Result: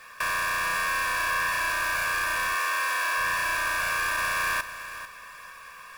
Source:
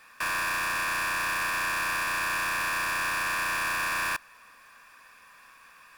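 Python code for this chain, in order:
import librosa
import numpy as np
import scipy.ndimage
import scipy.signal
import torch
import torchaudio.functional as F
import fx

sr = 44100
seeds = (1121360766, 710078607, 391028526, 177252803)

p1 = fx.echo_feedback(x, sr, ms=445, feedback_pct=24, wet_db=-5.0)
p2 = fx.over_compress(p1, sr, threshold_db=-33.0, ratio=-0.5)
p3 = p1 + F.gain(torch.from_numpy(p2), -2.0).numpy()
p4 = fx.highpass(p3, sr, hz=380.0, slope=12, at=(2.55, 3.18))
p5 = fx.quant_companded(p4, sr, bits=6)
p6 = p5 + 0.51 * np.pad(p5, (int(1.8 * sr / 1000.0), 0))[:len(p5)]
y = F.gain(torch.from_numpy(p6), -3.0).numpy()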